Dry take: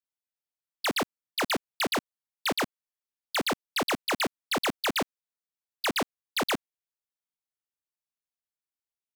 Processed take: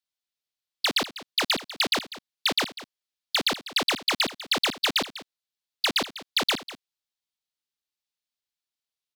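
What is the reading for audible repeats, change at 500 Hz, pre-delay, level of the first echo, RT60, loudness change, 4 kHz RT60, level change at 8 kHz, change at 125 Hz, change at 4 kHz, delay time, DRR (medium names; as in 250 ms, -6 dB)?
1, -1.0 dB, no reverb, -15.5 dB, no reverb, +4.5 dB, no reverb, +2.5 dB, -1.5 dB, +8.0 dB, 197 ms, no reverb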